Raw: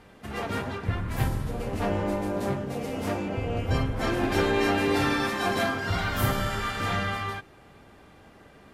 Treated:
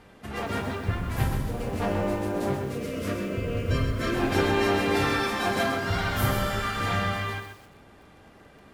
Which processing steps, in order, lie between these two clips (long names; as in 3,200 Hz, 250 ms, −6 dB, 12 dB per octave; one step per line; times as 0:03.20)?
0:02.64–0:04.15: Butterworth band-reject 820 Hz, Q 2.1
feedback echo at a low word length 128 ms, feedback 35%, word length 8 bits, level −7 dB